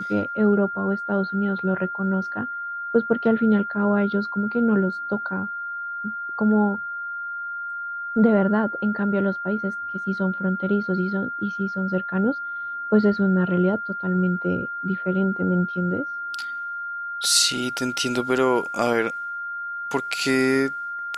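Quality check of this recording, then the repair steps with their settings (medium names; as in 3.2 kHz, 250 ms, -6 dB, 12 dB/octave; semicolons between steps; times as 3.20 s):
whine 1.4 kHz -28 dBFS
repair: band-stop 1.4 kHz, Q 30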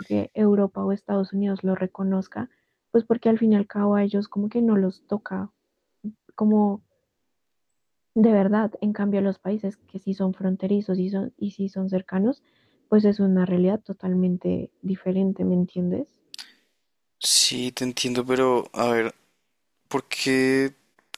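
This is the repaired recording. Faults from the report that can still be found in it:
nothing left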